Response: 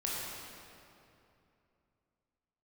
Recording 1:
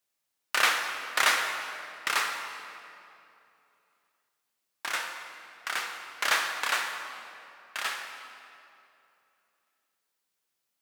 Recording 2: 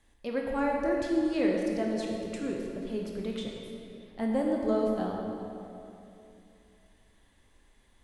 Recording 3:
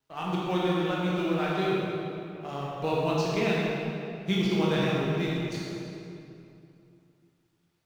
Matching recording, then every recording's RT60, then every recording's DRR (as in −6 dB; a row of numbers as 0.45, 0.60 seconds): 3; 2.8, 2.8, 2.8 seconds; 4.0, −1.0, −6.0 decibels